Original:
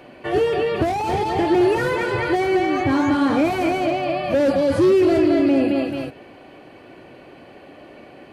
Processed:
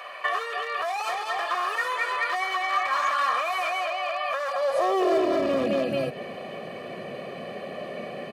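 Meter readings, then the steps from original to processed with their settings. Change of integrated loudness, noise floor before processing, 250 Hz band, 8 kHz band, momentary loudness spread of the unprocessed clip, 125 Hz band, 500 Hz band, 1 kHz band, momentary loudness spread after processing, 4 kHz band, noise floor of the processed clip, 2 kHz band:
-7.5 dB, -45 dBFS, -14.5 dB, no reading, 6 LU, -14.5 dB, -8.0 dB, -1.5 dB, 13 LU, -0.5 dB, -38 dBFS, 0.0 dB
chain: one-sided wavefolder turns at -16 dBFS; comb 1.7 ms, depth 81%; compression 4:1, threshold -29 dBFS, peak gain reduction 14 dB; high-pass sweep 1.1 kHz -> 200 Hz, 4.46–5.50 s; trim +4.5 dB

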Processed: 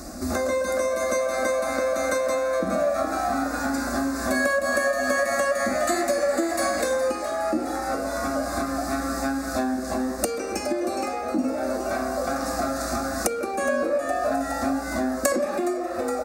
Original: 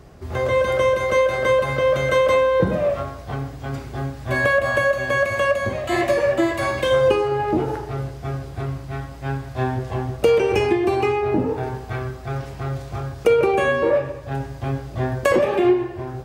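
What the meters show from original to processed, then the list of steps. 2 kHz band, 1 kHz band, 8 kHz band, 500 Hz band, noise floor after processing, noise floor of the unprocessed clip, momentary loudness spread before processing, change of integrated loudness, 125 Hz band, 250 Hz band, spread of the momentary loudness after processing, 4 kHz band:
-4.0 dB, -1.5 dB, +10.0 dB, -5.5 dB, -30 dBFS, -36 dBFS, 12 LU, -4.0 dB, -16.0 dB, -0.5 dB, 4 LU, -3.0 dB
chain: graphic EQ 125/250/1000/2000/4000/8000 Hz -9/+11/+6/-7/+6/+5 dB; on a send: frequency-shifting echo 415 ms, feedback 55%, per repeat +130 Hz, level -10 dB; on the sum: compression 6:1, threshold -29 dBFS, peak gain reduction 20 dB; treble shelf 2.4 kHz +11.5 dB; static phaser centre 630 Hz, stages 8; trim +8 dB

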